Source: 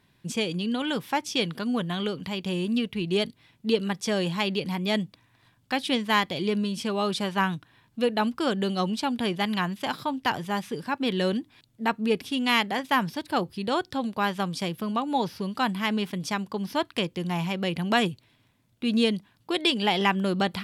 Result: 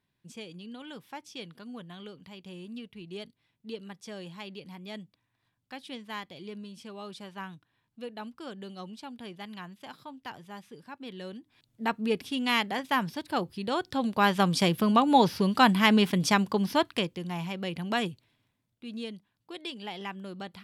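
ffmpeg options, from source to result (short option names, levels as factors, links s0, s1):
-af "volume=1.88,afade=t=in:st=11.4:d=0.42:silence=0.251189,afade=t=in:st=13.78:d=0.79:silence=0.354813,afade=t=out:st=16.39:d=0.81:silence=0.266073,afade=t=out:st=18.09:d=0.75:silence=0.354813"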